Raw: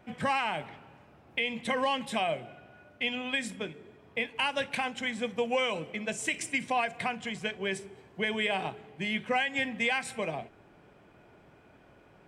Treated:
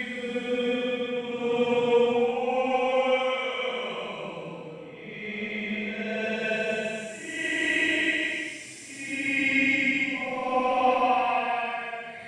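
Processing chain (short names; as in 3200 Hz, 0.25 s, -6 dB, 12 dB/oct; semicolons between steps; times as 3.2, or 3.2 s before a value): high shelf 5600 Hz -9 dB; transient shaper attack +10 dB, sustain -5 dB; Paulstretch 6.8×, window 0.25 s, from 5.13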